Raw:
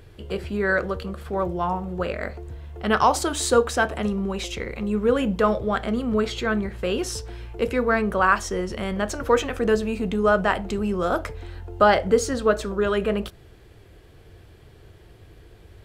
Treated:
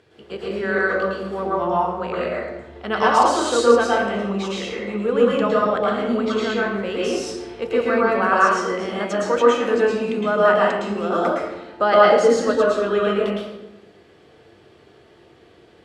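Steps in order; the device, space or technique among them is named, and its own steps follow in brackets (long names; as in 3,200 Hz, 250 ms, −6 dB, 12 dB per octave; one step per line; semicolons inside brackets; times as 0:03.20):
supermarket ceiling speaker (band-pass filter 220–6,600 Hz; convolution reverb RT60 1.0 s, pre-delay 106 ms, DRR −5.5 dB)
level −3 dB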